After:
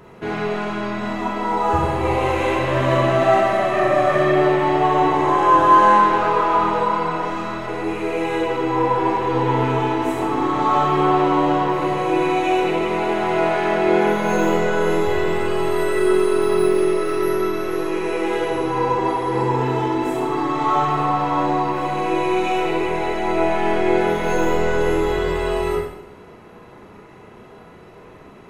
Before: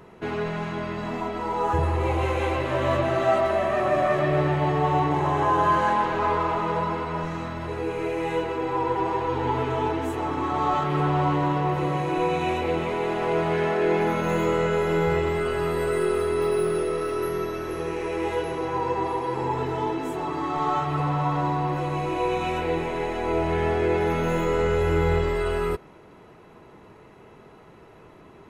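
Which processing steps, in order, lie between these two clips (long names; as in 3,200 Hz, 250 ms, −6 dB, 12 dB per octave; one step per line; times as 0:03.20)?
four-comb reverb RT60 0.76 s, combs from 31 ms, DRR −1.5 dB
level +2.5 dB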